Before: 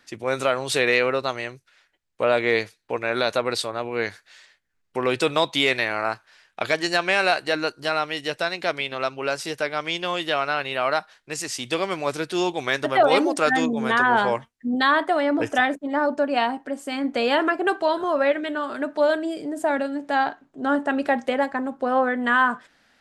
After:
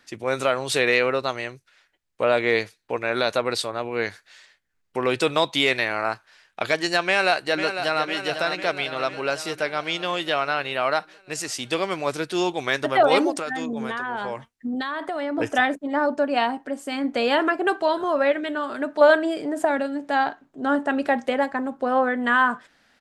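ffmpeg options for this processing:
ffmpeg -i in.wav -filter_complex "[0:a]asplit=2[link_01][link_02];[link_02]afade=type=in:start_time=7.06:duration=0.01,afade=type=out:start_time=8.04:duration=0.01,aecho=0:1:500|1000|1500|2000|2500|3000|3500|4000|4500:0.375837|0.244294|0.158791|0.103214|0.0670893|0.0436081|0.0283452|0.0184244|0.0119759[link_03];[link_01][link_03]amix=inputs=2:normalize=0,asettb=1/sr,asplit=3[link_04][link_05][link_06];[link_04]atrim=end=13.304[link_07];[link_05]atrim=start=13.3:end=15.38,asetpts=PTS-STARTPTS,afade=type=in:duration=0.004:curve=qsin,afade=type=out:start_time=2.076:duration=0.004:curve=qsin,acompressor=threshold=-24dB:ratio=10:attack=3.2:release=140:knee=1:detection=peak[link_08];[link_06]atrim=start=15.376[link_09];[link_07][link_08]acrossfade=duration=0.004:curve1=hsin:curve2=qsin[link_10];[link_10][link_09]acrossfade=duration=0.004:curve1=qsin:curve2=hsin,asettb=1/sr,asplit=3[link_11][link_12][link_13];[link_11]atrim=end=19.014[link_14];[link_12]atrim=start=19.01:end=19.65,asetpts=PTS-STARTPTS,afade=type=in:duration=0.004:curve=qsin,afade=type=out:start_time=0.636:duration=0.004:curve=qsin,equalizer=frequency=1300:width_type=o:width=2.6:gain=8.5[link_15];[link_13]atrim=start=19.646[link_16];[link_14][link_15]acrossfade=duration=0.004:curve1=hsin:curve2=qsin[link_17];[link_17][link_16]acrossfade=duration=0.004:curve1=qsin:curve2=hsin" out.wav

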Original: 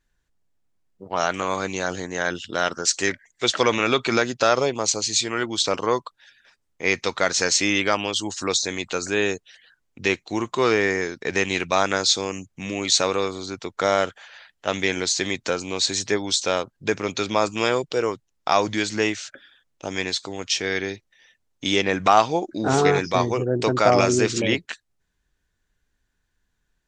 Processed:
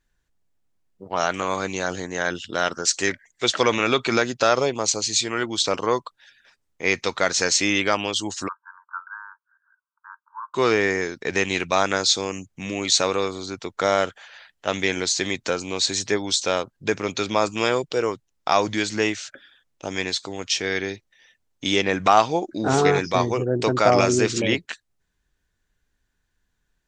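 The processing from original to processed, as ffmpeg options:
ffmpeg -i in.wav -filter_complex "[0:a]asplit=3[link_01][link_02][link_03];[link_01]afade=type=out:start_time=8.47:duration=0.02[link_04];[link_02]asuperpass=centerf=1200:order=20:qfactor=1.7,afade=type=in:start_time=8.47:duration=0.02,afade=type=out:start_time=10.54:duration=0.02[link_05];[link_03]afade=type=in:start_time=10.54:duration=0.02[link_06];[link_04][link_05][link_06]amix=inputs=3:normalize=0" out.wav

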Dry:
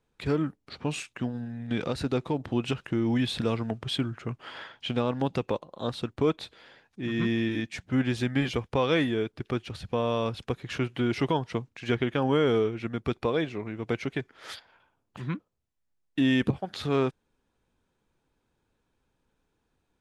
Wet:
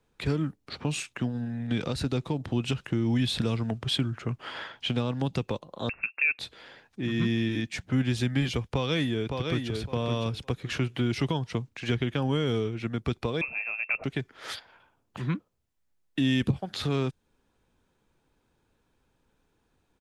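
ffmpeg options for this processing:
ffmpeg -i in.wav -filter_complex "[0:a]asettb=1/sr,asplit=3[link_01][link_02][link_03];[link_01]atrim=end=5.894[link_04];[link_02]atrim=start=5.89:end=6.39,asetpts=PTS-STARTPTS,afade=type=in:duration=0.004:curve=qsin,afade=type=out:start_time=0.496:duration=0.004:curve=qsin,lowpass=frequency=2400:width_type=q:width=0.5098,lowpass=frequency=2400:width_type=q:width=0.6013,lowpass=frequency=2400:width_type=q:width=0.9,lowpass=frequency=2400:width_type=q:width=2.563,afreqshift=-2800[link_05];[link_03]atrim=start=6.386[link_06];[link_04][link_05]acrossfade=duration=0.004:curve1=hsin:curve2=qsin[link_07];[link_07][link_06]acrossfade=duration=0.004:curve1=qsin:curve2=hsin,asplit=2[link_08][link_09];[link_09]afade=type=in:start_time=8.63:duration=0.01,afade=type=out:start_time=9.72:duration=0.01,aecho=0:1:560|1120|1680:0.473151|0.0709727|0.0106459[link_10];[link_08][link_10]amix=inputs=2:normalize=0,asettb=1/sr,asplit=3[link_11][link_12][link_13];[link_11]atrim=end=13.414[link_14];[link_12]atrim=start=13.41:end=14.04,asetpts=PTS-STARTPTS,afade=type=in:duration=0.004:curve=qsin,afade=type=out:start_time=0.626:duration=0.004:curve=qsin,lowpass=frequency=2400:width_type=q:width=0.5098,lowpass=frequency=2400:width_type=q:width=0.6013,lowpass=frequency=2400:width_type=q:width=0.9,lowpass=frequency=2400:width_type=q:width=2.563,afreqshift=-2800[link_15];[link_13]atrim=start=14.036[link_16];[link_14][link_15]acrossfade=duration=0.004:curve1=hsin:curve2=qsin[link_17];[link_17][link_16]acrossfade=duration=0.004:curve1=qsin:curve2=hsin,acrossover=split=200|3000[link_18][link_19][link_20];[link_19]acompressor=threshold=-38dB:ratio=2.5[link_21];[link_18][link_21][link_20]amix=inputs=3:normalize=0,volume=4dB" out.wav

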